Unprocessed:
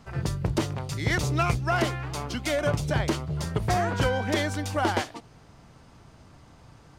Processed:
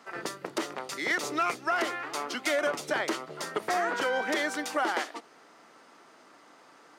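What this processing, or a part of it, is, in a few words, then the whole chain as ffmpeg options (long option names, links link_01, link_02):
laptop speaker: -af "highpass=frequency=290:width=0.5412,highpass=frequency=290:width=1.3066,equalizer=frequency=1300:width_type=o:width=0.36:gain=5.5,equalizer=frequency=1900:width_type=o:width=0.37:gain=5,alimiter=limit=-18dB:level=0:latency=1:release=130"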